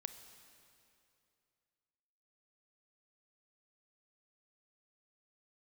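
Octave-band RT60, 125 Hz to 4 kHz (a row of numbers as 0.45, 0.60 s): 2.8, 2.6, 2.7, 2.6, 2.5, 2.3 s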